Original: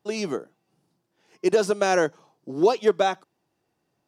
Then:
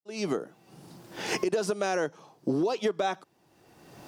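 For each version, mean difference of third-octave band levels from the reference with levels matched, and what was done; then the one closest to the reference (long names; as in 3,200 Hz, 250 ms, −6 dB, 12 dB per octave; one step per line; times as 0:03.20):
3.5 dB: fade in at the beginning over 0.61 s
camcorder AGC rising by 28 dB per second
brickwall limiter −13.5 dBFS, peak gain reduction 9 dB
downward compressor 3 to 1, threshold −25 dBFS, peak gain reduction 6.5 dB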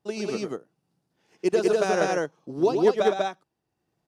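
5.0 dB: low-shelf EQ 110 Hz +9 dB
transient designer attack +3 dB, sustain −5 dB
loudspeakers that aren't time-aligned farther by 38 metres −6 dB, 67 metres −1 dB
downsampling to 32,000 Hz
level −5.5 dB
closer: first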